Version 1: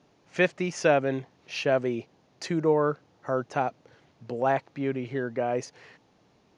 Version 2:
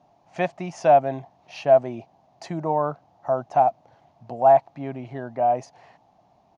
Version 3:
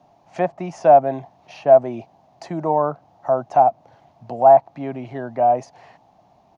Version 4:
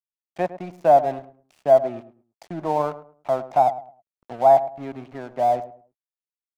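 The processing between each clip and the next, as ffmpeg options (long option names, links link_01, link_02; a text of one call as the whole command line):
ffmpeg -i in.wav -af "firequalizer=gain_entry='entry(160,0);entry(470,-8);entry(680,13);entry(1400,-6)':delay=0.05:min_phase=1" out.wav
ffmpeg -i in.wav -filter_complex "[0:a]acrossover=split=170|1500[link_01][link_02][link_03];[link_01]alimiter=level_in=18dB:limit=-24dB:level=0:latency=1,volume=-18dB[link_04];[link_03]acompressor=threshold=-48dB:ratio=6[link_05];[link_04][link_02][link_05]amix=inputs=3:normalize=0,volume=4.5dB" out.wav
ffmpeg -i in.wav -filter_complex "[0:a]aeval=exprs='sgn(val(0))*max(abs(val(0))-0.015,0)':channel_layout=same,asplit=2[link_01][link_02];[link_02]adelay=106,lowpass=frequency=1100:poles=1,volume=-13dB,asplit=2[link_03][link_04];[link_04]adelay=106,lowpass=frequency=1100:poles=1,volume=0.29,asplit=2[link_05][link_06];[link_06]adelay=106,lowpass=frequency=1100:poles=1,volume=0.29[link_07];[link_01][link_03][link_05][link_07]amix=inputs=4:normalize=0,volume=-3dB" out.wav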